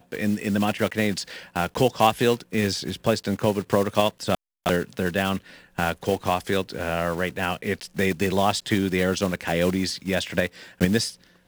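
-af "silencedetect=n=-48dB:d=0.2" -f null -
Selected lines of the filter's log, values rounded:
silence_start: 4.35
silence_end: 4.66 | silence_duration: 0.31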